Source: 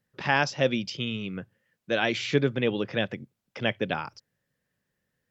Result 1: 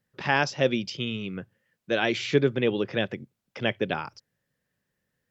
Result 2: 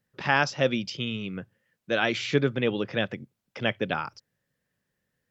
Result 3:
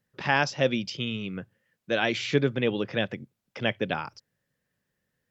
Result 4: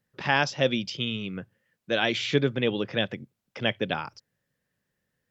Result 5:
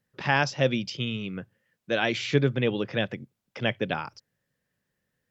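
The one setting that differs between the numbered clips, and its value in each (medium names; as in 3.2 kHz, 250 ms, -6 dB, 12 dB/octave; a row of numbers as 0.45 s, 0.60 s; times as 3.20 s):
dynamic bell, frequency: 380 Hz, 1.3 kHz, 8.7 kHz, 3.4 kHz, 130 Hz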